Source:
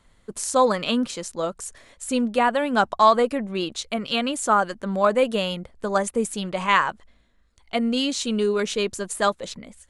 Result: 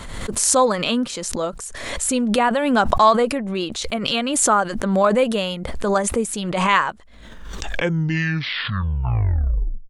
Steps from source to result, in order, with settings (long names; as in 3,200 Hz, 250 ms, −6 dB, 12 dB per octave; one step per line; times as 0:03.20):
turntable brake at the end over 2.76 s
background raised ahead of every attack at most 37 dB per second
level +1.5 dB